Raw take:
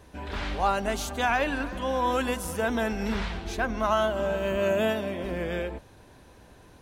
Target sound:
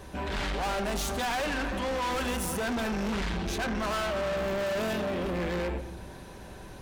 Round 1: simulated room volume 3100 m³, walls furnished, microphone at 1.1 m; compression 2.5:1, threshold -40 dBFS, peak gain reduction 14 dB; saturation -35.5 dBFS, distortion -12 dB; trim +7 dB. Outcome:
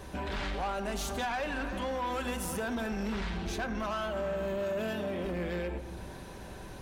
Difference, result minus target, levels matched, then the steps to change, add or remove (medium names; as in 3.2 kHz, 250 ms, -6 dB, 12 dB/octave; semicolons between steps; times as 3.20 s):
compression: peak gain reduction +14 dB
remove: compression 2.5:1, threshold -40 dBFS, peak gain reduction 14 dB